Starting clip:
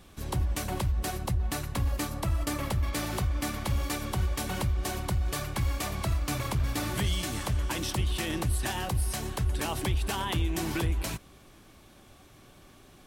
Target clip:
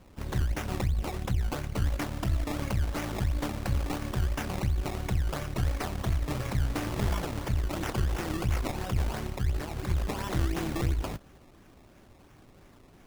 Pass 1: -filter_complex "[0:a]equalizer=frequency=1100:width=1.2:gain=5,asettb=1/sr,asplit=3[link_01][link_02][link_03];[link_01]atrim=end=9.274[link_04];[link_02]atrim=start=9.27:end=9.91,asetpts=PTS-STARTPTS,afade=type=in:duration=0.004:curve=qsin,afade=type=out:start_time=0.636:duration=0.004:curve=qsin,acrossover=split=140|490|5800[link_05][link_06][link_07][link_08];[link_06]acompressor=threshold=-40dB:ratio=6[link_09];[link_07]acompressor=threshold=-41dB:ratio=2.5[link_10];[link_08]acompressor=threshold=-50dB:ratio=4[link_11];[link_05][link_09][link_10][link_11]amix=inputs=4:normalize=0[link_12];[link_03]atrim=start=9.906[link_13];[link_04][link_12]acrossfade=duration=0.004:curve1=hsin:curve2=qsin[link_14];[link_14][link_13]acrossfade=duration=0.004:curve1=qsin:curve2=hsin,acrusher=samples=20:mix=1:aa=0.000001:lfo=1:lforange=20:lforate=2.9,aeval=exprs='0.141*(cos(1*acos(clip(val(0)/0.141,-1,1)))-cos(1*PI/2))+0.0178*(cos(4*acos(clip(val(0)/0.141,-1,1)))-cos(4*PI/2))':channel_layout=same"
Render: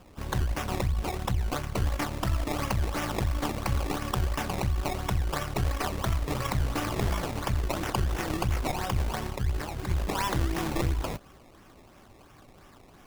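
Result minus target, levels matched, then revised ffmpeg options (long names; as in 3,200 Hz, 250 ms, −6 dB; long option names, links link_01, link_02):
1,000 Hz band +4.0 dB
-filter_complex "[0:a]equalizer=frequency=1100:width=1.2:gain=-6.5,asettb=1/sr,asplit=3[link_01][link_02][link_03];[link_01]atrim=end=9.274[link_04];[link_02]atrim=start=9.27:end=9.91,asetpts=PTS-STARTPTS,afade=type=in:duration=0.004:curve=qsin,afade=type=out:start_time=0.636:duration=0.004:curve=qsin,acrossover=split=140|490|5800[link_05][link_06][link_07][link_08];[link_06]acompressor=threshold=-40dB:ratio=6[link_09];[link_07]acompressor=threshold=-41dB:ratio=2.5[link_10];[link_08]acompressor=threshold=-50dB:ratio=4[link_11];[link_05][link_09][link_10][link_11]amix=inputs=4:normalize=0[link_12];[link_03]atrim=start=9.906[link_13];[link_04][link_12]acrossfade=duration=0.004:curve1=hsin:curve2=qsin[link_14];[link_14][link_13]acrossfade=duration=0.004:curve1=qsin:curve2=hsin,acrusher=samples=20:mix=1:aa=0.000001:lfo=1:lforange=20:lforate=2.9,aeval=exprs='0.141*(cos(1*acos(clip(val(0)/0.141,-1,1)))-cos(1*PI/2))+0.0178*(cos(4*acos(clip(val(0)/0.141,-1,1)))-cos(4*PI/2))':channel_layout=same"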